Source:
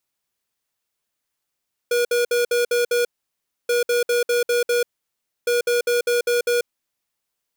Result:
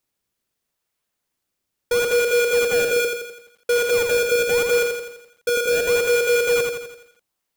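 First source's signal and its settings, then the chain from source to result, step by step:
beeps in groups square 481 Hz, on 0.14 s, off 0.06 s, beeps 6, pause 0.64 s, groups 3, −19 dBFS
in parallel at −11 dB: sample-and-hold swept by an LFO 26×, swing 160% 0.76 Hz
on the sum: feedback echo at a low word length 84 ms, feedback 55%, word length 9 bits, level −4 dB

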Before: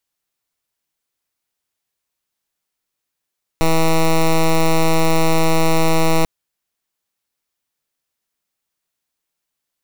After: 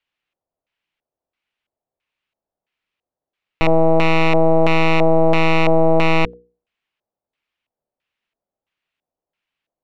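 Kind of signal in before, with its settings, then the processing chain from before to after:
pulse wave 162 Hz, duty 10% −13 dBFS 2.64 s
mains-hum notches 60/120/180/240/300/360/420/480 Hz
auto-filter low-pass square 1.5 Hz 650–2,700 Hz

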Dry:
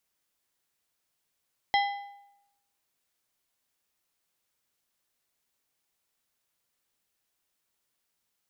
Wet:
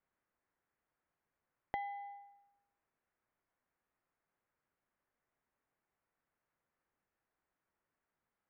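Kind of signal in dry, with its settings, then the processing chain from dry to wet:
struck metal plate, lowest mode 806 Hz, decay 0.87 s, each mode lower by 4.5 dB, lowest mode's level −20.5 dB
low-pass filter 1,900 Hz 24 dB per octave
downward compressor 4 to 1, threshold −40 dBFS

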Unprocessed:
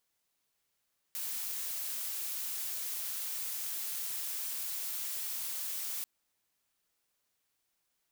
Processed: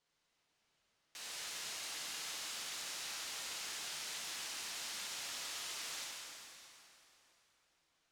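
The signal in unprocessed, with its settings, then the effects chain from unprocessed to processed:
noise blue, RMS −37.5 dBFS 4.89 s
low-pass filter 5,300 Hz 12 dB per octave
soft clipping −40 dBFS
dense smooth reverb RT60 3.2 s, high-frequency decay 0.85×, DRR −4.5 dB

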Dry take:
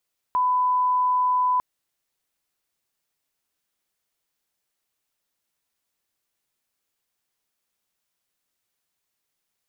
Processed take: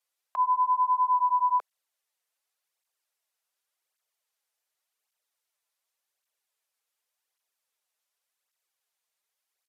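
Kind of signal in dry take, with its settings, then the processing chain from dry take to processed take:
line-up tone −18 dBFS 1.25 s
downsampling to 32,000 Hz
high-pass filter 470 Hz 24 dB per octave
through-zero flanger with one copy inverted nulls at 0.88 Hz, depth 5.6 ms

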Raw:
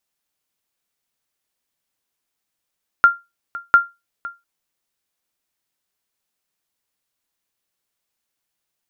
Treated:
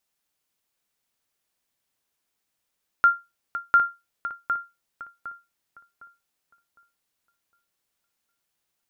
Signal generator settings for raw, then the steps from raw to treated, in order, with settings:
ping with an echo 1,390 Hz, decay 0.22 s, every 0.70 s, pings 2, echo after 0.51 s, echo −19 dB −2.5 dBFS
brickwall limiter −10.5 dBFS
feedback echo with a low-pass in the loop 758 ms, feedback 33%, low-pass 2,000 Hz, level −6.5 dB

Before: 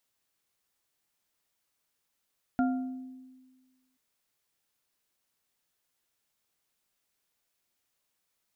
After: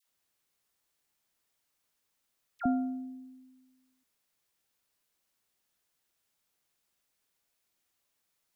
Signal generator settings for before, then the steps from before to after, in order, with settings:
struck glass bar, length 1.38 s, lowest mode 258 Hz, modes 3, decay 1.52 s, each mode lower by 5.5 dB, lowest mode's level −22.5 dB
all-pass dispersion lows, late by 68 ms, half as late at 1,100 Hz

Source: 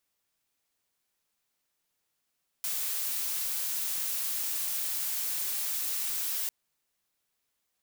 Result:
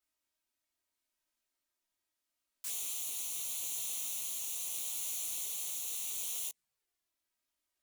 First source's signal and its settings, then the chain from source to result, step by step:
noise blue, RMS −32 dBFS 3.85 s
flanger swept by the level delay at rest 3.2 ms, full sweep at −30 dBFS
dynamic equaliser 8,000 Hz, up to +6 dB, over −54 dBFS, Q 1.5
micro pitch shift up and down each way 27 cents

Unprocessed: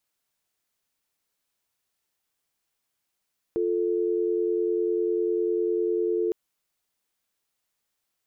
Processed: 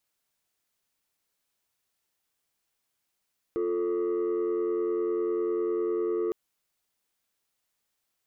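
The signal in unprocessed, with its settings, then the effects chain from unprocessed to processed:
call progress tone dial tone, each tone −25 dBFS 2.76 s
soft clipping −23.5 dBFS

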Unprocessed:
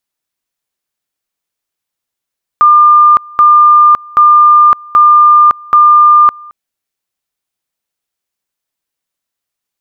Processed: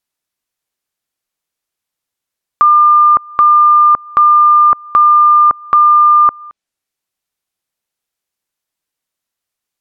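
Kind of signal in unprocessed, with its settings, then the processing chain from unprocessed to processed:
tone at two levels in turn 1,200 Hz −1.5 dBFS, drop 26.5 dB, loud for 0.56 s, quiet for 0.22 s, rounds 5
treble cut that deepens with the level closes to 1,300 Hz, closed at −8 dBFS

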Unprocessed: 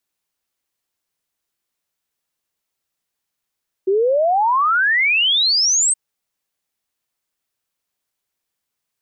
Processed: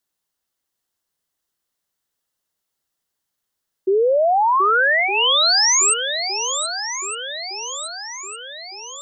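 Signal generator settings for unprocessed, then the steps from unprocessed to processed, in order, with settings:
exponential sine sweep 370 Hz → 8,500 Hz 2.07 s −13 dBFS
parametric band 2,400 Hz −8.5 dB 0.24 octaves
on a send: feedback echo with a long and a short gap by turns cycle 1,211 ms, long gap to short 1.5 to 1, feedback 51%, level −9 dB

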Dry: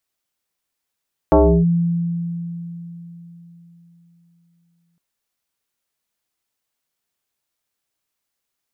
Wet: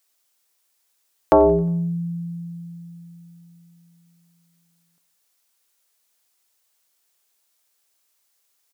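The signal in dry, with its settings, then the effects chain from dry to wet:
two-operator FM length 3.66 s, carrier 170 Hz, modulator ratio 1.39, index 3.2, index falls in 0.33 s linear, decay 3.91 s, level −7.5 dB
bass and treble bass −14 dB, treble +6 dB
in parallel at −0.5 dB: downward compressor, threshold −24 dBFS
on the sum: repeating echo 89 ms, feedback 53%, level −21.5 dB

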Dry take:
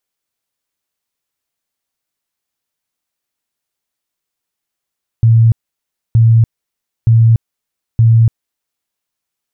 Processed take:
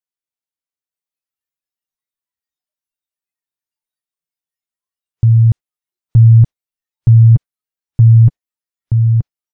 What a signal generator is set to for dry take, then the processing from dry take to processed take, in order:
tone bursts 114 Hz, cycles 33, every 0.92 s, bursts 4, −4.5 dBFS
on a send: repeating echo 927 ms, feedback 15%, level −3 dB
on the sum: noise reduction from a noise print of the clip's start 16 dB

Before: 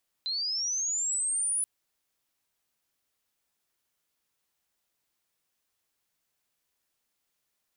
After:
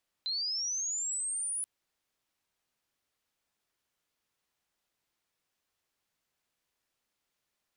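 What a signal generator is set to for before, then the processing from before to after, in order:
glide linear 4,000 Hz → 10,000 Hz −28.5 dBFS → −25.5 dBFS 1.38 s
high-shelf EQ 7,500 Hz −9 dB

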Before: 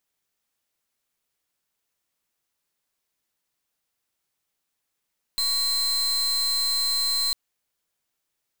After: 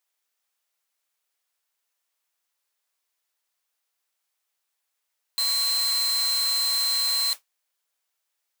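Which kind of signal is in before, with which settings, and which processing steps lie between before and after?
pulse wave 4,110 Hz, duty 40% −24 dBFS 1.95 s
noise that follows the level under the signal 11 dB
high-pass filter 580 Hz 12 dB per octave

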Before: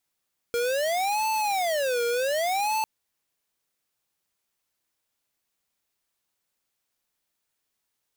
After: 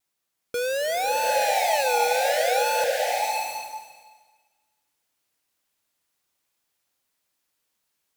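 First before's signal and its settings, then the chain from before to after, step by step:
siren wail 472–878 Hz 0.66 per second square −25.5 dBFS 2.30 s
low-shelf EQ 83 Hz −6 dB
pitch vibrato 2 Hz 50 cents
slow-attack reverb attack 720 ms, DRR −1 dB

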